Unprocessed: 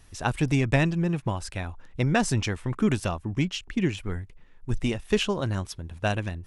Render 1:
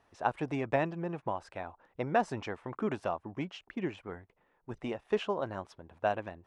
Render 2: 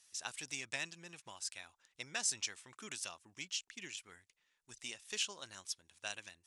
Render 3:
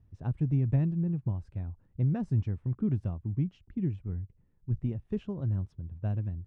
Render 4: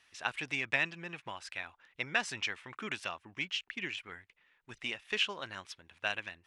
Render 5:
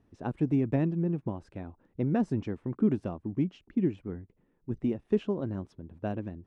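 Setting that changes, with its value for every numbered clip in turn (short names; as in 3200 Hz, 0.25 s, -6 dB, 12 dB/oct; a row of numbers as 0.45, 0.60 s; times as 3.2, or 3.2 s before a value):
band-pass, frequency: 740, 6900, 110, 2400, 280 Hz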